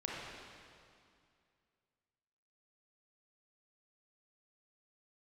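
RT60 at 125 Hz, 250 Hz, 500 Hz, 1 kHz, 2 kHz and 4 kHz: 2.6, 2.5, 2.3, 2.3, 2.2, 2.1 seconds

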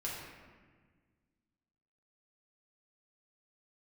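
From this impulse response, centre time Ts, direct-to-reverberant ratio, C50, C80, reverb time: 83 ms, −6.0 dB, 0.5 dB, 2.5 dB, 1.5 s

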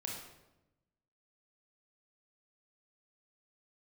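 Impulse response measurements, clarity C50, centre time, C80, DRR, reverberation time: 2.0 dB, 50 ms, 5.5 dB, −1.5 dB, 0.95 s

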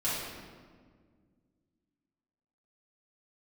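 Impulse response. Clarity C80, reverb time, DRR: 1.0 dB, 1.8 s, −10.5 dB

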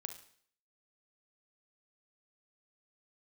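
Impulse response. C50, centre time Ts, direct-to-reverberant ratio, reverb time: 9.0 dB, 13 ms, 6.5 dB, 0.55 s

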